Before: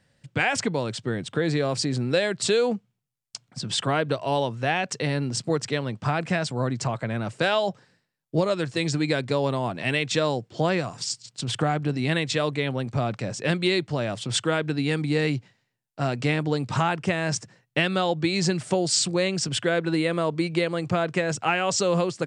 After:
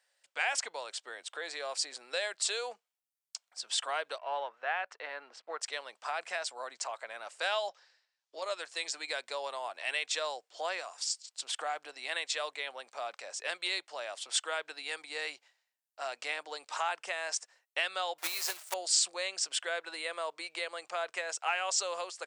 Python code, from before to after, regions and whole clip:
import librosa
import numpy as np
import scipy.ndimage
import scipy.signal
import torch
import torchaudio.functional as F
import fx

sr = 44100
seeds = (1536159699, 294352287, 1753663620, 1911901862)

y = fx.chain(x, sr, fx.law_mismatch(coded='A'),
    fx.lowpass(hz=2100.0, slope=12),
    fx.dynamic_eq(hz=1400.0, q=2.1, threshold_db=-44.0, ratio=4.0, max_db=6), at=(4.18, 5.61))
y = fx.chain(y, sr, fx.lowpass(hz=5900.0, slope=24),
    fx.high_shelf(hz=2900.0, db=8.0),
    fx.band_squash(depth_pct=40), at=(7.69, 8.42))
y = fx.chain(y, sr, fx.block_float(bits=3),
    fx.upward_expand(threshold_db=-32.0, expansion=1.5), at=(18.18, 18.76))
y = scipy.signal.sosfilt(scipy.signal.butter(4, 620.0, 'highpass', fs=sr, output='sos'), y)
y = fx.high_shelf(y, sr, hz=6100.0, db=8.0)
y = F.gain(torch.from_numpy(y), -8.0).numpy()